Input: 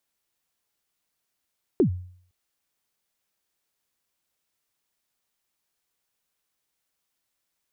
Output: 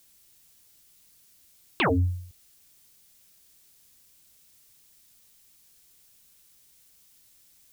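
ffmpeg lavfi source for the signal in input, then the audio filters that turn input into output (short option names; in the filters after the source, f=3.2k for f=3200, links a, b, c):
-f lavfi -i "aevalsrc='0.224*pow(10,-3*t/0.56)*sin(2*PI*(430*0.098/log(90/430)*(exp(log(90/430)*min(t,0.098)/0.098)-1)+90*max(t-0.098,0)))':d=0.51:s=44100"
-af "equalizer=f=920:w=0.35:g=-13.5,aeval=exprs='0.106*sin(PI/2*7.94*val(0)/0.106)':c=same"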